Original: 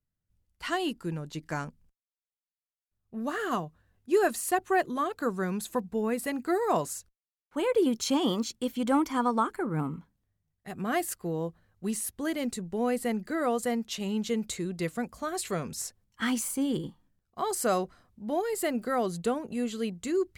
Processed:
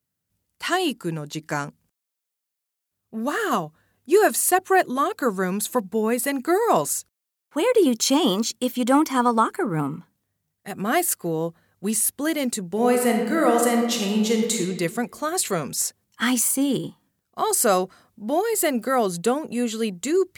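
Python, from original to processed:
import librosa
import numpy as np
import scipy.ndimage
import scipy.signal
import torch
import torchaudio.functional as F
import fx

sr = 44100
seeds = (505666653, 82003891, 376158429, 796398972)

y = fx.reverb_throw(x, sr, start_s=12.66, length_s=1.95, rt60_s=1.4, drr_db=1.5)
y = scipy.signal.sosfilt(scipy.signal.bessel(2, 160.0, 'highpass', norm='mag', fs=sr, output='sos'), y)
y = fx.high_shelf(y, sr, hz=6600.0, db=7.0)
y = F.gain(torch.from_numpy(y), 7.5).numpy()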